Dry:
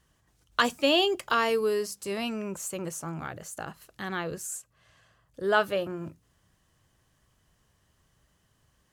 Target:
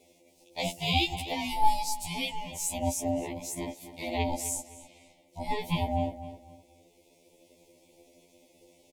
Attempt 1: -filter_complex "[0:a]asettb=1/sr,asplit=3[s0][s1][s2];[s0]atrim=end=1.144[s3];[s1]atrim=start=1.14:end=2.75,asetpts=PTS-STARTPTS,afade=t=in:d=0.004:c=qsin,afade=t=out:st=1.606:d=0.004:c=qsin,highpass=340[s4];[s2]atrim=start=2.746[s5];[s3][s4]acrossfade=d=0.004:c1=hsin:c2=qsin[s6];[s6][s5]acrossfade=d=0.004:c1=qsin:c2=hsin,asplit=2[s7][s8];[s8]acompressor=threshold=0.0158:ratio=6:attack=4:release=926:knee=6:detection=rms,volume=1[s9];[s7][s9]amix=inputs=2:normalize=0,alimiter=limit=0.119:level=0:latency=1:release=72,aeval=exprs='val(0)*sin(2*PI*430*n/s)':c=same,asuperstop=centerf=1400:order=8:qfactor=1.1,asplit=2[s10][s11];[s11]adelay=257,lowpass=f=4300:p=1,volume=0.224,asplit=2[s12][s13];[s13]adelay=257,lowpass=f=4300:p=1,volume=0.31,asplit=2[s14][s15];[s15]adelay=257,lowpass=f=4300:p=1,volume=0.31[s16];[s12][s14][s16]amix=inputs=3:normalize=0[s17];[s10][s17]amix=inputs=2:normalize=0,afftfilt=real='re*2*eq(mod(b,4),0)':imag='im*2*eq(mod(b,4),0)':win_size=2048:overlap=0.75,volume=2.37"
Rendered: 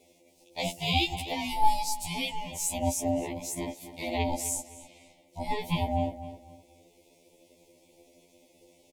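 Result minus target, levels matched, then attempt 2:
compression: peak gain reduction -6 dB
-filter_complex "[0:a]asettb=1/sr,asplit=3[s0][s1][s2];[s0]atrim=end=1.144[s3];[s1]atrim=start=1.14:end=2.75,asetpts=PTS-STARTPTS,afade=t=in:d=0.004:c=qsin,afade=t=out:st=1.606:d=0.004:c=qsin,highpass=340[s4];[s2]atrim=start=2.746[s5];[s3][s4]acrossfade=d=0.004:c1=hsin:c2=qsin[s6];[s6][s5]acrossfade=d=0.004:c1=qsin:c2=hsin,asplit=2[s7][s8];[s8]acompressor=threshold=0.00708:ratio=6:attack=4:release=926:knee=6:detection=rms,volume=1[s9];[s7][s9]amix=inputs=2:normalize=0,alimiter=limit=0.119:level=0:latency=1:release=72,aeval=exprs='val(0)*sin(2*PI*430*n/s)':c=same,asuperstop=centerf=1400:order=8:qfactor=1.1,asplit=2[s10][s11];[s11]adelay=257,lowpass=f=4300:p=1,volume=0.224,asplit=2[s12][s13];[s13]adelay=257,lowpass=f=4300:p=1,volume=0.31,asplit=2[s14][s15];[s15]adelay=257,lowpass=f=4300:p=1,volume=0.31[s16];[s12][s14][s16]amix=inputs=3:normalize=0[s17];[s10][s17]amix=inputs=2:normalize=0,afftfilt=real='re*2*eq(mod(b,4),0)':imag='im*2*eq(mod(b,4),0)':win_size=2048:overlap=0.75,volume=2.37"

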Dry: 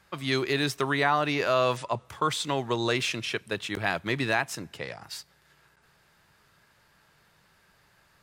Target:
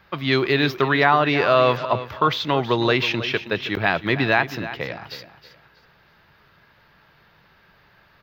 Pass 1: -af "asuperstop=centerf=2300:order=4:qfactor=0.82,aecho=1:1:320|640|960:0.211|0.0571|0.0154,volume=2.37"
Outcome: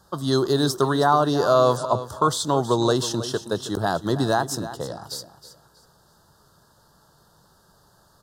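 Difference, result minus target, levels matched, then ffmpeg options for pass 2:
8 kHz band +18.5 dB
-af "asuperstop=centerf=8900:order=4:qfactor=0.82,aecho=1:1:320|640|960:0.211|0.0571|0.0154,volume=2.37"

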